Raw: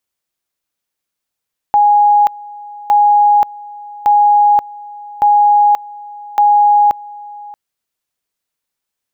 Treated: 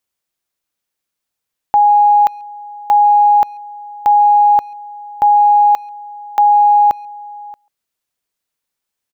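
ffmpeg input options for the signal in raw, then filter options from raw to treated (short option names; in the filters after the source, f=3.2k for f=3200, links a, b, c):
-f lavfi -i "aevalsrc='pow(10,(-6-22*gte(mod(t,1.16),0.53))/20)*sin(2*PI*827*t)':d=5.8:s=44100"
-filter_complex "[0:a]asplit=2[a][b];[b]adelay=140,highpass=300,lowpass=3.4k,asoftclip=type=hard:threshold=-15.5dB,volume=-29dB[c];[a][c]amix=inputs=2:normalize=0"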